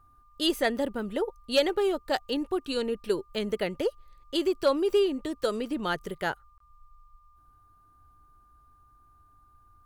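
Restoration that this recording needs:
clipped peaks rebuilt −14.5 dBFS
notch filter 1,200 Hz, Q 30
repair the gap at 0:06.58, 23 ms

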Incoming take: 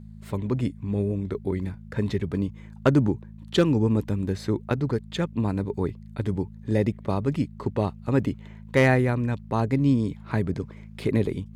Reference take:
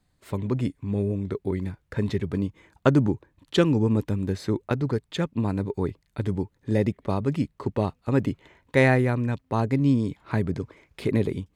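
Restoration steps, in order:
clipped peaks rebuilt −10 dBFS
hum removal 53.5 Hz, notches 4

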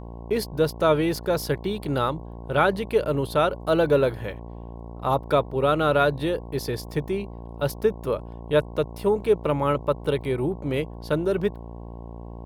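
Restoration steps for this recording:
hum removal 57.8 Hz, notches 19

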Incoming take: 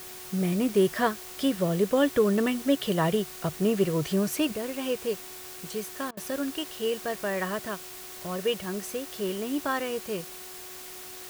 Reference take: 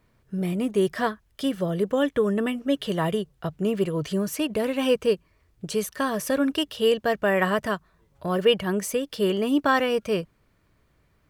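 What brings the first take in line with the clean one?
hum removal 367.9 Hz, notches 7
repair the gap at 0:06.11, 60 ms
noise reduction from a noise print 22 dB
level 0 dB, from 0:04.52 +8 dB

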